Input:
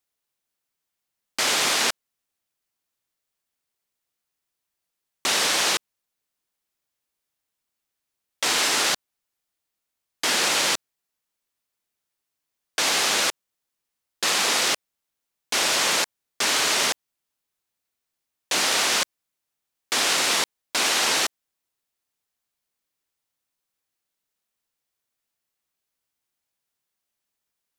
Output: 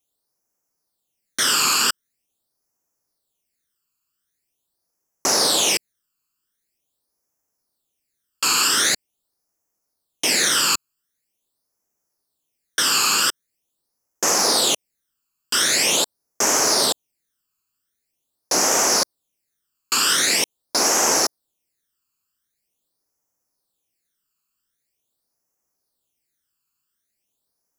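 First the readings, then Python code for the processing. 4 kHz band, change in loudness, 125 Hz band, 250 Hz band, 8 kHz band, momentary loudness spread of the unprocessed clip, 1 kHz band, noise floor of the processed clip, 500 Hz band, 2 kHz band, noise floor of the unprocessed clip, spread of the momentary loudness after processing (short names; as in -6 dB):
+2.5 dB, +3.5 dB, +4.5 dB, +5.5 dB, +6.0 dB, 8 LU, +3.0 dB, -78 dBFS, +4.5 dB, 0.0 dB, -83 dBFS, 8 LU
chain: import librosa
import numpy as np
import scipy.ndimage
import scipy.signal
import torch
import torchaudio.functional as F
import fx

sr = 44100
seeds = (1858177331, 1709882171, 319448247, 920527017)

y = fx.bass_treble(x, sr, bass_db=-5, treble_db=12)
y = fx.phaser_stages(y, sr, stages=12, low_hz=620.0, high_hz=3600.0, hz=0.44, feedback_pct=40)
y = fx.high_shelf(y, sr, hz=2600.0, db=-11.5)
y = F.gain(torch.from_numpy(y), 7.5).numpy()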